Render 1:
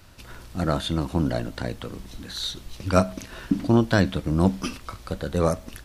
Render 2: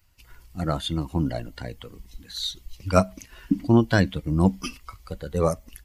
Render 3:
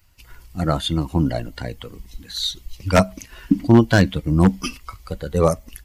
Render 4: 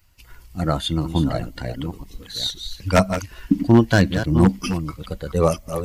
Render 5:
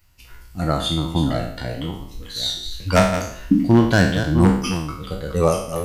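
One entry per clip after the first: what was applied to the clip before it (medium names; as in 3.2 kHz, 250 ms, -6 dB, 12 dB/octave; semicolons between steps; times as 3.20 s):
expander on every frequency bin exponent 1.5; trim +2 dB
wavefolder -8.5 dBFS; trim +5.5 dB
chunks repeated in reverse 510 ms, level -9 dB; trim -1 dB
spectral sustain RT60 0.62 s; trim -1 dB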